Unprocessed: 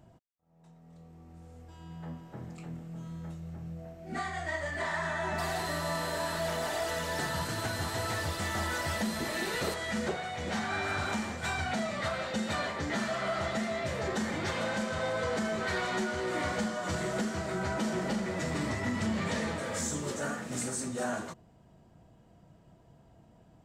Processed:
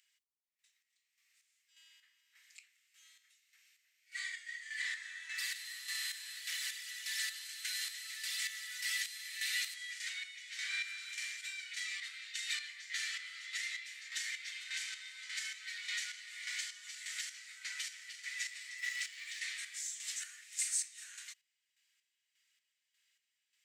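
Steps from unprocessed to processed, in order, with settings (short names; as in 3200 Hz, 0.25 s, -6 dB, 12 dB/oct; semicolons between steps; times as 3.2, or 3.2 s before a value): 18.78–19.4 zero-crossing step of -48 dBFS; elliptic high-pass 2000 Hz, stop band 80 dB; chopper 1.7 Hz, depth 60%, duty 40%; gain +3 dB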